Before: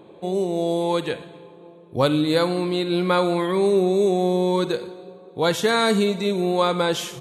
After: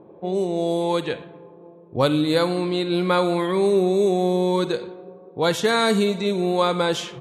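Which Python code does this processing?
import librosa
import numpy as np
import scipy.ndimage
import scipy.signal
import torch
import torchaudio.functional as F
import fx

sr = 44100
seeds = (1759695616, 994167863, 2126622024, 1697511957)

y = fx.env_lowpass(x, sr, base_hz=980.0, full_db=-17.0)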